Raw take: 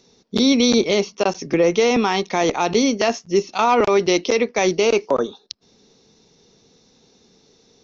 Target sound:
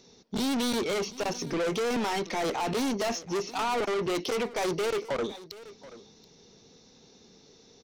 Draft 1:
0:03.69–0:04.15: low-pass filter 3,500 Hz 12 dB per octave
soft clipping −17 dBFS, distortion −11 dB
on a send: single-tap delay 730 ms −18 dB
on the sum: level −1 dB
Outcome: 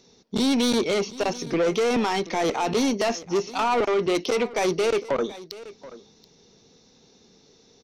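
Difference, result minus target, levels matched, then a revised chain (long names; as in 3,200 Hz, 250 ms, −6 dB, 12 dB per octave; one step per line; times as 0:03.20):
soft clipping: distortion −5 dB
0:03.69–0:04.15: low-pass filter 3,500 Hz 12 dB per octave
soft clipping −25.5 dBFS, distortion −5 dB
on a send: single-tap delay 730 ms −18 dB
on the sum: level −1 dB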